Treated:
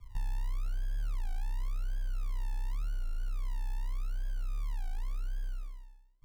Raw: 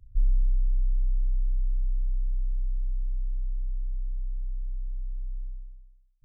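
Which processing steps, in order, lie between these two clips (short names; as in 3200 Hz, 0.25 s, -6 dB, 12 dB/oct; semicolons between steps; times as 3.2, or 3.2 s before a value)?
compressor 5:1, threshold -30 dBFS, peak gain reduction 11 dB; soft clip -27.5 dBFS, distortion -23 dB; modulation noise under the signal 33 dB; decimation with a swept rate 39×, swing 60% 0.88 Hz; record warp 33 1/3 rpm, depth 250 cents; gain +1 dB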